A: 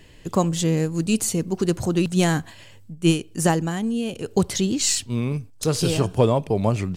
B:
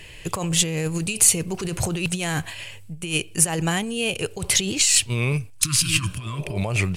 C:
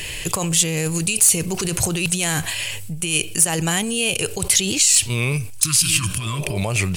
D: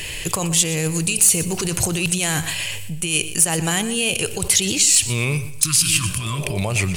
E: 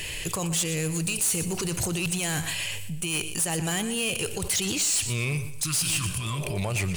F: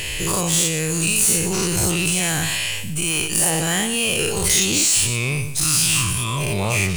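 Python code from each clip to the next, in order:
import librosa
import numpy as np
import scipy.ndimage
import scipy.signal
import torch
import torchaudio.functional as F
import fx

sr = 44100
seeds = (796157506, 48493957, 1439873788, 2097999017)

y1 = fx.over_compress(x, sr, threshold_db=-24.0, ratio=-1.0)
y1 = fx.graphic_eq_15(y1, sr, hz=(250, 2500, 10000), db=(-11, 10, 9))
y1 = fx.spec_repair(y1, sr, seeds[0], start_s=5.6, length_s=0.94, low_hz=330.0, high_hz=980.0, source='both')
y1 = y1 * librosa.db_to_amplitude(2.0)
y2 = fx.high_shelf(y1, sr, hz=4100.0, db=11.5)
y2 = np.clip(y2, -10.0 ** (0.0 / 20.0), 10.0 ** (0.0 / 20.0))
y2 = fx.env_flatten(y2, sr, amount_pct=50)
y2 = y2 * librosa.db_to_amplitude(-7.5)
y3 = fx.echo_feedback(y2, sr, ms=121, feedback_pct=30, wet_db=-14)
y4 = 10.0 ** (-17.5 / 20.0) * np.tanh(y3 / 10.0 ** (-17.5 / 20.0))
y4 = y4 * librosa.db_to_amplitude(-4.0)
y5 = fx.spec_dilate(y4, sr, span_ms=120)
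y5 = fx.quant_float(y5, sr, bits=4)
y5 = y5 * librosa.db_to_amplitude(2.5)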